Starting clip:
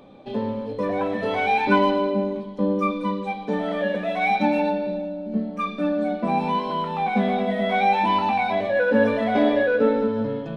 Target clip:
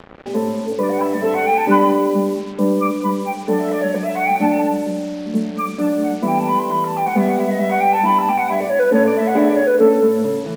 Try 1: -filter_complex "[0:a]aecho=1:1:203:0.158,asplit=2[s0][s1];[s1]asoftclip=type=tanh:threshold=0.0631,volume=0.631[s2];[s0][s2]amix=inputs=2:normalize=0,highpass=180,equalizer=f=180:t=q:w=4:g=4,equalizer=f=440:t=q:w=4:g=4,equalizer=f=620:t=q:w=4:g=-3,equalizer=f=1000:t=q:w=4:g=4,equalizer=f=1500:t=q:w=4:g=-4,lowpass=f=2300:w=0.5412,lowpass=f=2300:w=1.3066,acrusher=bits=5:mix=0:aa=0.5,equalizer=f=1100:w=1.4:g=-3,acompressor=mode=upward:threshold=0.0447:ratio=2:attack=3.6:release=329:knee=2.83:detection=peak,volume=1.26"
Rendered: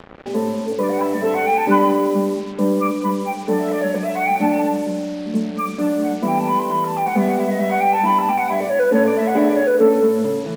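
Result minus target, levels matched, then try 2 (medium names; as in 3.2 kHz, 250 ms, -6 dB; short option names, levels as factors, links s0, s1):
saturation: distortion +7 dB
-filter_complex "[0:a]aecho=1:1:203:0.158,asplit=2[s0][s1];[s1]asoftclip=type=tanh:threshold=0.158,volume=0.631[s2];[s0][s2]amix=inputs=2:normalize=0,highpass=180,equalizer=f=180:t=q:w=4:g=4,equalizer=f=440:t=q:w=4:g=4,equalizer=f=620:t=q:w=4:g=-3,equalizer=f=1000:t=q:w=4:g=4,equalizer=f=1500:t=q:w=4:g=-4,lowpass=f=2300:w=0.5412,lowpass=f=2300:w=1.3066,acrusher=bits=5:mix=0:aa=0.5,equalizer=f=1100:w=1.4:g=-3,acompressor=mode=upward:threshold=0.0447:ratio=2:attack=3.6:release=329:knee=2.83:detection=peak,volume=1.26"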